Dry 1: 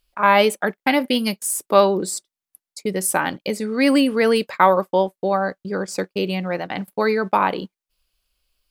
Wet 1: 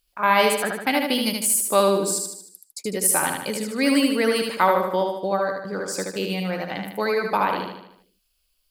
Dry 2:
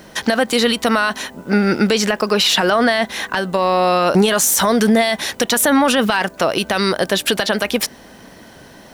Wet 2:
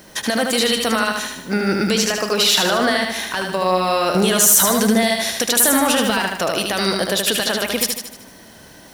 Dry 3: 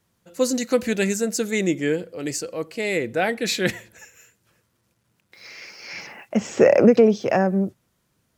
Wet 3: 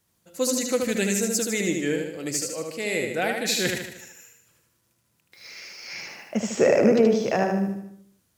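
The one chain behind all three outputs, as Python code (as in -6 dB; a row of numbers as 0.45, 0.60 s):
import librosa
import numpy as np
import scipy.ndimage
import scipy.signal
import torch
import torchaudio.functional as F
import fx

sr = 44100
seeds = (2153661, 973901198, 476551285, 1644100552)

p1 = fx.high_shelf(x, sr, hz=4600.0, db=9.0)
p2 = p1 + fx.echo_feedback(p1, sr, ms=76, feedback_pct=51, wet_db=-4.0, dry=0)
y = p2 * 10.0 ** (-5.0 / 20.0)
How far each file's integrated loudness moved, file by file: -2.0, -1.0, -2.5 LU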